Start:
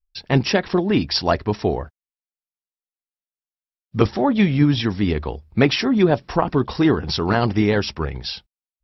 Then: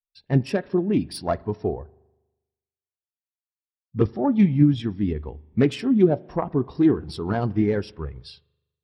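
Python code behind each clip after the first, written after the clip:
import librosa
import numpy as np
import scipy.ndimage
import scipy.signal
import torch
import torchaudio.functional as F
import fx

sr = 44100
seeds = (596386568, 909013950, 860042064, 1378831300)

y = fx.self_delay(x, sr, depth_ms=0.15)
y = fx.rev_spring(y, sr, rt60_s=1.6, pass_ms=(40,), chirp_ms=25, drr_db=15.0)
y = fx.spectral_expand(y, sr, expansion=1.5)
y = y * librosa.db_to_amplitude(-4.5)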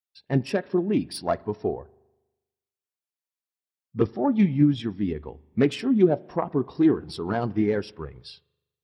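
y = fx.highpass(x, sr, hz=190.0, slope=6)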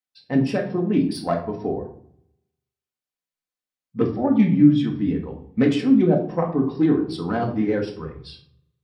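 y = fx.high_shelf(x, sr, hz=7800.0, db=-5.5)
y = fx.hum_notches(y, sr, base_hz=50, count=2)
y = fx.room_shoebox(y, sr, seeds[0], volume_m3=630.0, walls='furnished', distance_m=2.0)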